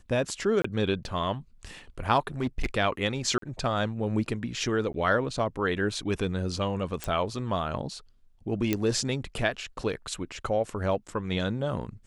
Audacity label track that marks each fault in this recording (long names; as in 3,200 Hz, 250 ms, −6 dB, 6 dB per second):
0.620000	0.640000	drop-out 24 ms
2.190000	2.750000	clipping −22.5 dBFS
3.380000	3.420000	drop-out 43 ms
4.930000	4.940000	drop-out 12 ms
7.040000	7.040000	click −14 dBFS
8.730000	8.730000	click −11 dBFS